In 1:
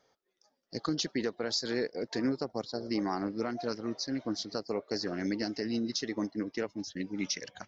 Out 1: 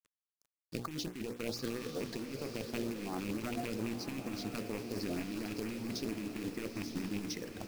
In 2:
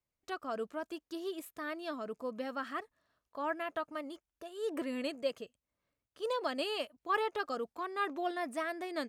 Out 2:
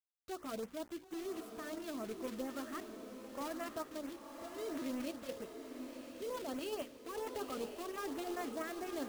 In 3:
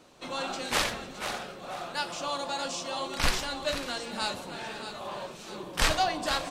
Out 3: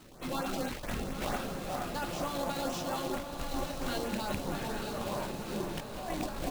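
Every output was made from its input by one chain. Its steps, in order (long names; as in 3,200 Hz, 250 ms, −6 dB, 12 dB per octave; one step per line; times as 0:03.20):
loose part that buzzes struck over −38 dBFS, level −21 dBFS
spectral tilt −3 dB per octave
mains-hum notches 60/120/180/240/300/360/420/480/540 Hz
compressor whose output falls as the input rises −33 dBFS, ratio −1
log-companded quantiser 4 bits
auto-filter notch saw up 4.4 Hz 410–5,200 Hz
feedback delay with all-pass diffusion 970 ms, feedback 46%, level −7 dB
level −6 dB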